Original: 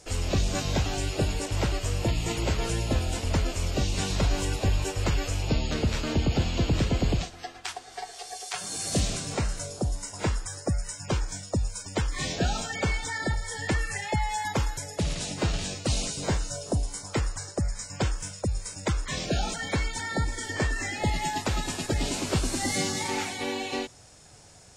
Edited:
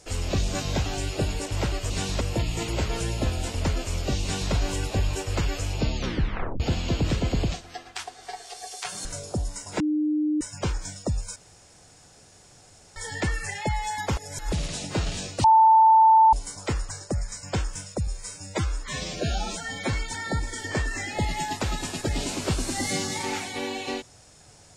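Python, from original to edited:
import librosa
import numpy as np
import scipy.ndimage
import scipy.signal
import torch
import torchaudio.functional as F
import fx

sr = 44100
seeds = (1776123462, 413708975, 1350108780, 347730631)

y = fx.edit(x, sr, fx.duplicate(start_s=3.91, length_s=0.31, to_s=1.9),
    fx.tape_stop(start_s=5.65, length_s=0.64),
    fx.cut(start_s=8.74, length_s=0.78),
    fx.bleep(start_s=10.27, length_s=0.61, hz=303.0, db=-21.0),
    fx.room_tone_fill(start_s=11.83, length_s=1.6),
    fx.reverse_span(start_s=14.64, length_s=0.35),
    fx.bleep(start_s=15.91, length_s=0.89, hz=887.0, db=-12.0),
    fx.stretch_span(start_s=18.54, length_s=1.24, factor=1.5), tone=tone)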